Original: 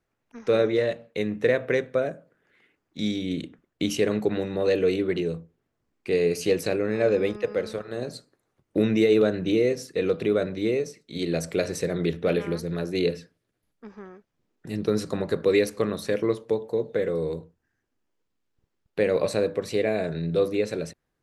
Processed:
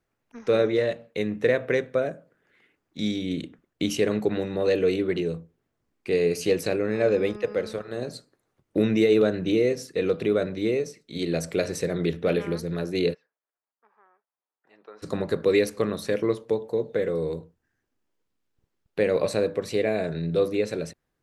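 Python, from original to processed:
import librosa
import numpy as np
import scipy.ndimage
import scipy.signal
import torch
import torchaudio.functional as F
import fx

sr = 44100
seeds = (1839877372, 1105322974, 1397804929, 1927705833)

y = fx.ladder_bandpass(x, sr, hz=1100.0, resonance_pct=35, at=(13.13, 15.02), fade=0.02)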